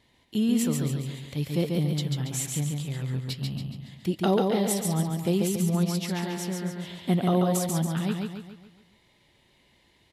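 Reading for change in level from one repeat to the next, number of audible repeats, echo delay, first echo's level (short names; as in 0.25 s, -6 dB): -6.5 dB, 5, 0.14 s, -3.5 dB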